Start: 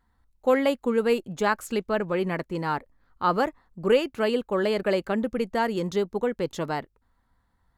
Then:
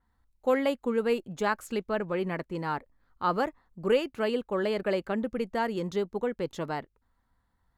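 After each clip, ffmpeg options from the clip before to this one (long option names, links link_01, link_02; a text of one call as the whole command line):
ffmpeg -i in.wav -af "adynamicequalizer=threshold=0.00501:dfrequency=4100:dqfactor=0.7:tfrequency=4100:tqfactor=0.7:attack=5:release=100:ratio=0.375:range=2:mode=cutabove:tftype=highshelf,volume=-4dB" out.wav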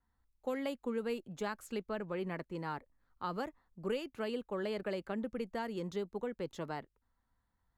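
ffmpeg -i in.wav -filter_complex "[0:a]acrossover=split=270|3000[link_01][link_02][link_03];[link_02]acompressor=threshold=-28dB:ratio=6[link_04];[link_01][link_04][link_03]amix=inputs=3:normalize=0,volume=-7dB" out.wav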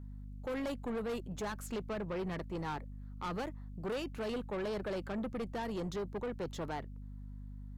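ffmpeg -i in.wav -af "aeval=exprs='val(0)+0.00316*(sin(2*PI*50*n/s)+sin(2*PI*2*50*n/s)/2+sin(2*PI*3*50*n/s)/3+sin(2*PI*4*50*n/s)/4+sin(2*PI*5*50*n/s)/5)':channel_layout=same,asoftclip=type=tanh:threshold=-39dB,volume=5.5dB" out.wav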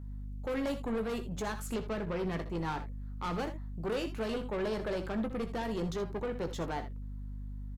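ffmpeg -i in.wav -af "aecho=1:1:18|64|80:0.316|0.224|0.2,volume=2.5dB" out.wav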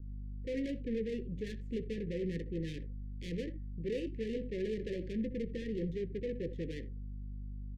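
ffmpeg -i in.wav -af "adynamicsmooth=sensitivity=5.5:basefreq=770,asuperstop=centerf=970:order=20:qfactor=0.79,volume=-1.5dB" out.wav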